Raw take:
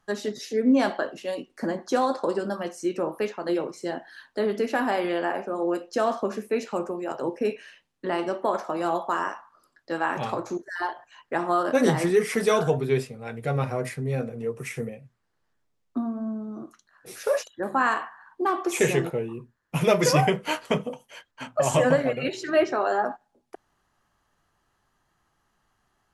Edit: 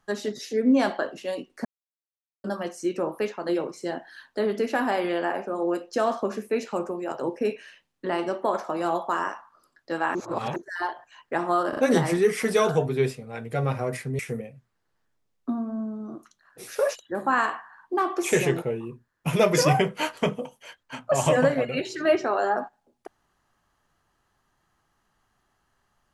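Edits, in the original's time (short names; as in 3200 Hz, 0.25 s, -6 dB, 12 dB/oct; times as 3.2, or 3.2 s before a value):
1.65–2.44 mute
10.15–10.56 reverse
11.69 stutter 0.04 s, 3 plays
14.11–14.67 cut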